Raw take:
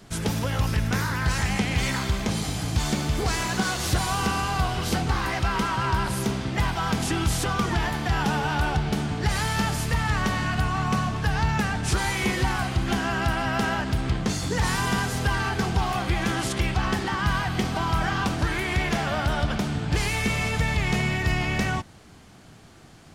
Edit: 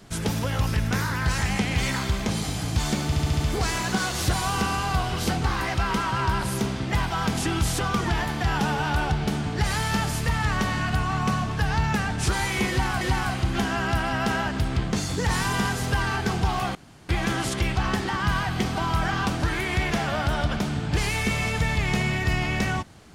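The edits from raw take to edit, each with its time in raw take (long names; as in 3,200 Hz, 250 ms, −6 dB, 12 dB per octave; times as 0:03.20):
0:03.05: stutter 0.07 s, 6 plays
0:12.34–0:12.66: repeat, 2 plays
0:16.08: splice in room tone 0.34 s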